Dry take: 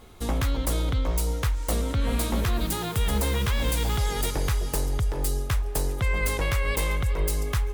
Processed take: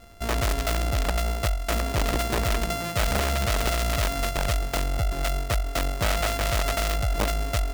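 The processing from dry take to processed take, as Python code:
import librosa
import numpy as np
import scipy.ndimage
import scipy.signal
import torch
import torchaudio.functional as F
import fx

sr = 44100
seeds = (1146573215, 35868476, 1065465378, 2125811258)

y = np.r_[np.sort(x[:len(x) // 64 * 64].reshape(-1, 64), axis=1).ravel(), x[len(x) // 64 * 64:]]
y = (np.mod(10.0 ** (17.5 / 20.0) * y + 1.0, 2.0) - 1.0) / 10.0 ** (17.5 / 20.0)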